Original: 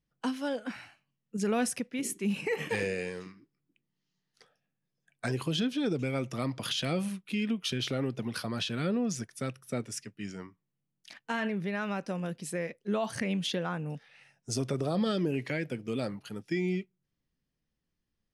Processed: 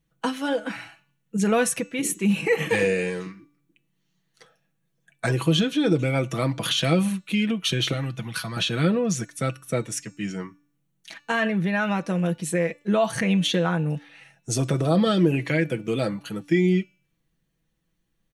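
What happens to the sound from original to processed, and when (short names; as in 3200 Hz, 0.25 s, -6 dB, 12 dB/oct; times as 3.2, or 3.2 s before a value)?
7.93–8.57 bell 410 Hz -13.5 dB 1.6 oct
whole clip: notch 5000 Hz, Q 5.3; comb 6.1 ms, depth 56%; de-hum 291.3 Hz, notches 28; gain +8 dB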